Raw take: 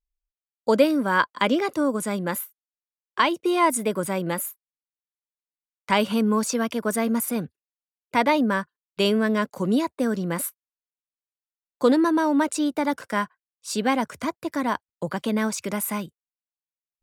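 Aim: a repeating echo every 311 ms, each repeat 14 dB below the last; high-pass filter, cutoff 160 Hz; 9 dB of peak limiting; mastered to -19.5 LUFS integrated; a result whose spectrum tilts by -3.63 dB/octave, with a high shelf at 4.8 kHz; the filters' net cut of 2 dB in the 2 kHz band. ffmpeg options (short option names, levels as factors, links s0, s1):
-af "highpass=160,equalizer=f=2000:t=o:g=-4,highshelf=f=4800:g=9,alimiter=limit=0.178:level=0:latency=1,aecho=1:1:311|622:0.2|0.0399,volume=2.11"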